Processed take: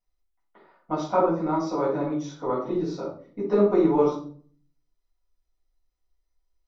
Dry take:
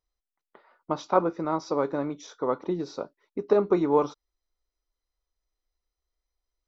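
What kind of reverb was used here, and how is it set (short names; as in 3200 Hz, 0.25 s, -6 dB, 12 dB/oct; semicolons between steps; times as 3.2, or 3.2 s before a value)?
shoebox room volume 460 m³, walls furnished, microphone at 7.3 m; gain -9.5 dB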